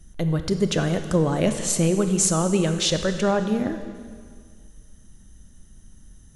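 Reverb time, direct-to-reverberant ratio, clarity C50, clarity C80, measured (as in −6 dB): 1.9 s, 8.0 dB, 9.0 dB, 10.5 dB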